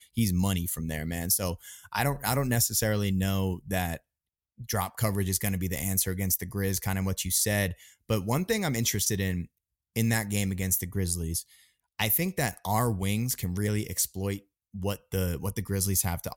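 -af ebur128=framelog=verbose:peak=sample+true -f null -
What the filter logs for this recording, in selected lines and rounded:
Integrated loudness:
  I:         -28.4 LUFS
  Threshold: -38.7 LUFS
Loudness range:
  LRA:         2.1 LU
  Threshold: -48.8 LUFS
  LRA low:   -29.9 LUFS
  LRA high:  -27.9 LUFS
Sample peak:
  Peak:      -11.6 dBFS
True peak:
  Peak:      -11.6 dBFS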